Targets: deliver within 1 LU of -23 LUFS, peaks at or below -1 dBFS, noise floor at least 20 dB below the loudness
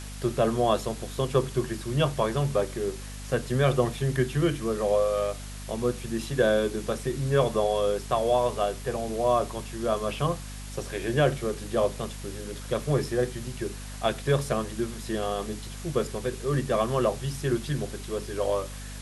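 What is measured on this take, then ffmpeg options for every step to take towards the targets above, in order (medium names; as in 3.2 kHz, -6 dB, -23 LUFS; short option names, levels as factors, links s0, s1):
hum 50 Hz; highest harmonic 250 Hz; hum level -37 dBFS; noise floor -39 dBFS; noise floor target -48 dBFS; loudness -28.0 LUFS; peak level -9.0 dBFS; loudness target -23.0 LUFS
-> -af "bandreject=f=50:t=h:w=6,bandreject=f=100:t=h:w=6,bandreject=f=150:t=h:w=6,bandreject=f=200:t=h:w=6,bandreject=f=250:t=h:w=6"
-af "afftdn=nr=9:nf=-39"
-af "volume=1.78"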